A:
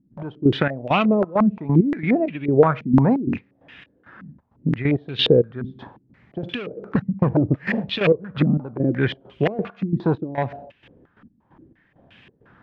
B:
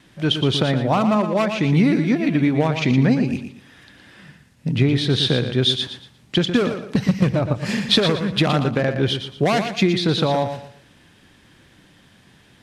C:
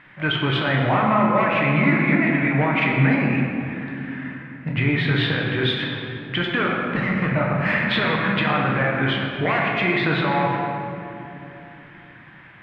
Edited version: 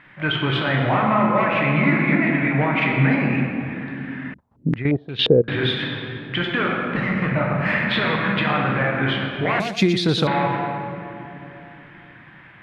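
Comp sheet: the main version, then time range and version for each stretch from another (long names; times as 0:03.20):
C
0:04.34–0:05.48: punch in from A
0:09.60–0:10.27: punch in from B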